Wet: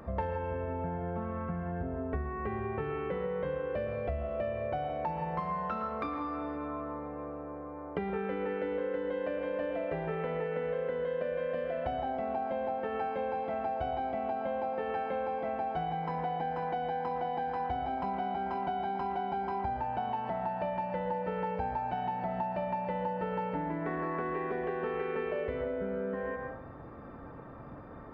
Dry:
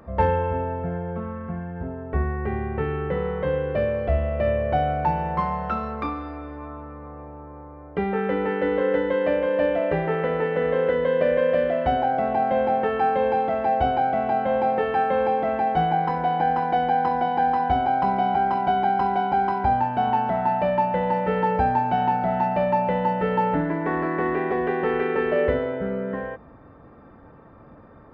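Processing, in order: on a send at -5 dB: reverberation RT60 0.50 s, pre-delay 102 ms; on the sum: compression, threshold -32 dBFS, peak gain reduction 16.5 dB

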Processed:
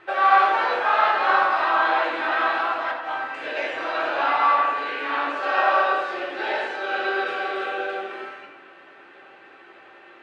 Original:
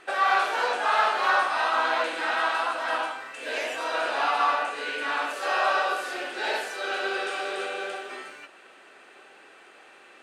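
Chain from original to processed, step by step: low-pass 3.1 kHz 12 dB/octave; 2.91–3.57 s: compressor with a negative ratio -33 dBFS, ratio -0.5; reverberation RT60 1.0 s, pre-delay 4 ms, DRR -1.5 dB

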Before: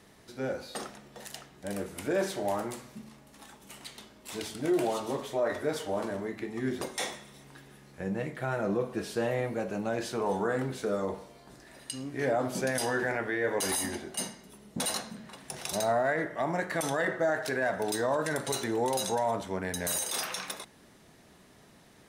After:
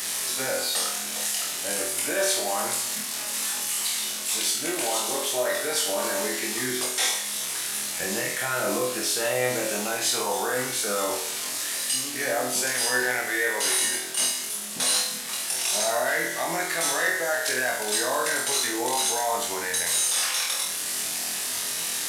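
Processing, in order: one-bit delta coder 64 kbps, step -41.5 dBFS; tilt EQ +4.5 dB/octave; gain riding within 4 dB 0.5 s; peak limiter -23 dBFS, peak gain reduction 5.5 dB; flutter echo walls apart 4.1 m, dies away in 0.51 s; trim +4 dB

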